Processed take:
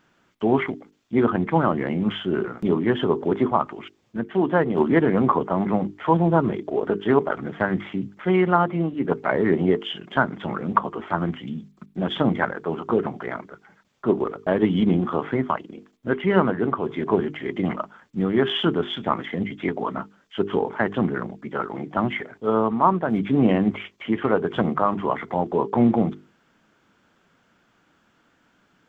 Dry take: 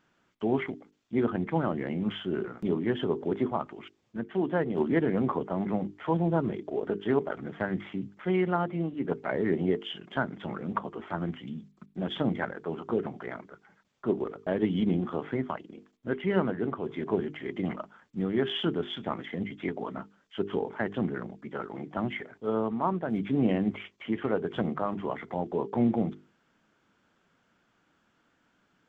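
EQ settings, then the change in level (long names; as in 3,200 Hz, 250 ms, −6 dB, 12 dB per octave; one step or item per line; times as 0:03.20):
dynamic equaliser 1,100 Hz, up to +6 dB, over −45 dBFS, Q 1.7
+7.0 dB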